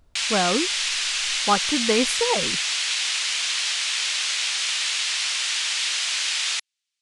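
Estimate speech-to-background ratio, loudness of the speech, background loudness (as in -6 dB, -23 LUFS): -3.0 dB, -25.0 LUFS, -22.0 LUFS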